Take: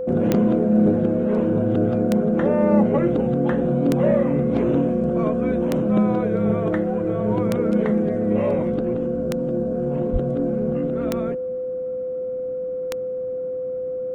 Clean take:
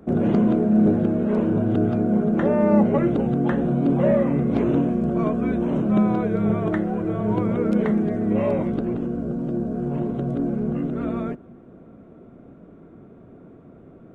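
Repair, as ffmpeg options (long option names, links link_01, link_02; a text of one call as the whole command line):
ffmpeg -i in.wav -filter_complex "[0:a]adeclick=threshold=4,bandreject=frequency=510:width=30,asplit=3[link_01][link_02][link_03];[link_01]afade=type=out:start_time=10.12:duration=0.02[link_04];[link_02]highpass=frequency=140:width=0.5412,highpass=frequency=140:width=1.3066,afade=type=in:start_time=10.12:duration=0.02,afade=type=out:start_time=10.24:duration=0.02[link_05];[link_03]afade=type=in:start_time=10.24:duration=0.02[link_06];[link_04][link_05][link_06]amix=inputs=3:normalize=0" out.wav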